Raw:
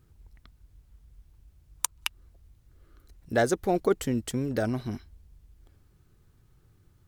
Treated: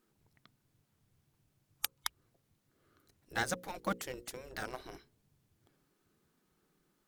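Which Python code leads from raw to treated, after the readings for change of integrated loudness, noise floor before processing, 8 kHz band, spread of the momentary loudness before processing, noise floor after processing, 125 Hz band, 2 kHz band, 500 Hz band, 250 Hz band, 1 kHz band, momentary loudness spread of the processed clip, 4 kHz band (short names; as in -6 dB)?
-10.5 dB, -63 dBFS, -8.5 dB, 10 LU, -78 dBFS, -16.0 dB, -4.5 dB, -16.0 dB, -16.0 dB, -7.0 dB, 11 LU, -5.0 dB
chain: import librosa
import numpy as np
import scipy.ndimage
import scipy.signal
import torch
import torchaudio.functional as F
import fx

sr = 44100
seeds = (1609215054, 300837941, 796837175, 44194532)

p1 = fx.spec_gate(x, sr, threshold_db=-10, keep='weak')
p2 = fx.hum_notches(p1, sr, base_hz=60, count=9)
p3 = np.where(np.abs(p2) >= 10.0 ** (-31.5 / 20.0), p2, 0.0)
p4 = p2 + (p3 * 10.0 ** (-7.5 / 20.0))
y = p4 * 10.0 ** (-4.5 / 20.0)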